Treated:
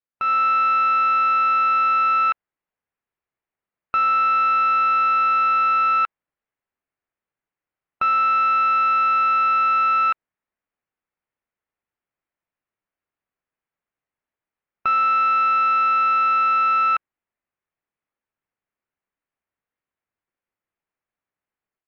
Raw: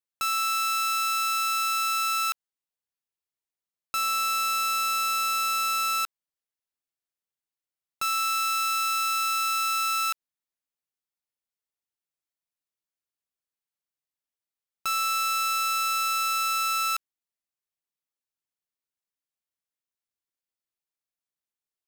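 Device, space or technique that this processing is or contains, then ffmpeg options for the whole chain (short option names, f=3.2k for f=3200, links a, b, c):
action camera in a waterproof case: -af "lowpass=f=2.3k:w=0.5412,lowpass=f=2.3k:w=1.3066,dynaudnorm=f=150:g=3:m=10dB" -ar 16000 -c:a aac -b:a 64k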